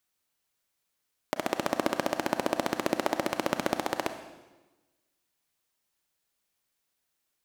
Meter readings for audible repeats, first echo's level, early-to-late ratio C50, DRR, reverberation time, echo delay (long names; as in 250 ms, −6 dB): no echo audible, no echo audible, 10.0 dB, 8.5 dB, 1.2 s, no echo audible